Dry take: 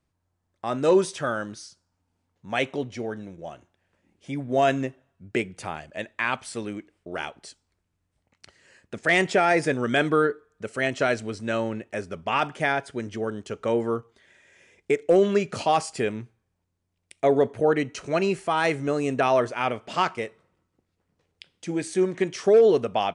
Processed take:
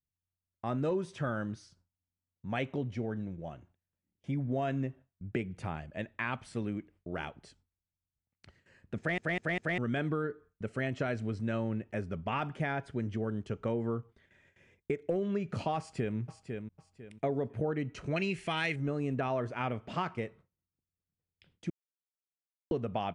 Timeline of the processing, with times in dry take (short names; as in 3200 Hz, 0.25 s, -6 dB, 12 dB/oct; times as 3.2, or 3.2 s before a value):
8.98 stutter in place 0.20 s, 4 plays
15.78–16.18 echo throw 0.5 s, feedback 30%, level -10 dB
18.16–18.76 resonant high shelf 1600 Hz +10.5 dB, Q 1.5
21.7–22.71 mute
whole clip: gate with hold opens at -47 dBFS; tone controls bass +12 dB, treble -10 dB; compressor, threshold -22 dBFS; gain -7 dB